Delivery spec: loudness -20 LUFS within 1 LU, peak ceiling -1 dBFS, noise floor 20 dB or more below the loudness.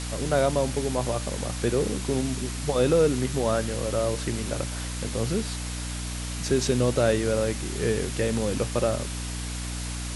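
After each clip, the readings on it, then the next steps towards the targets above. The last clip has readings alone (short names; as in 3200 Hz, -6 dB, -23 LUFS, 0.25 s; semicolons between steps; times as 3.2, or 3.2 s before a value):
hum 60 Hz; harmonics up to 300 Hz; hum level -31 dBFS; noise floor -32 dBFS; noise floor target -47 dBFS; loudness -26.5 LUFS; peak -9.5 dBFS; loudness target -20.0 LUFS
-> notches 60/120/180/240/300 Hz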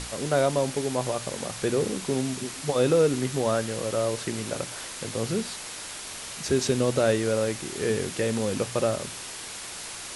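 hum none; noise floor -38 dBFS; noise floor target -48 dBFS
-> denoiser 10 dB, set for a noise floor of -38 dBFS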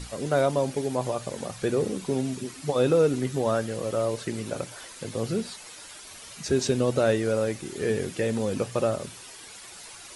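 noise floor -45 dBFS; noise floor target -47 dBFS
-> denoiser 6 dB, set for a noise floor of -45 dBFS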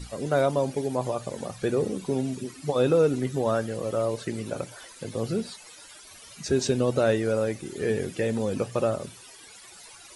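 noise floor -48 dBFS; loudness -27.0 LUFS; peak -10.5 dBFS; loudness target -20.0 LUFS
-> gain +7 dB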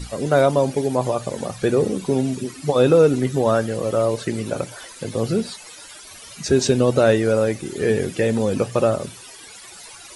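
loudness -20.0 LUFS; peak -3.5 dBFS; noise floor -41 dBFS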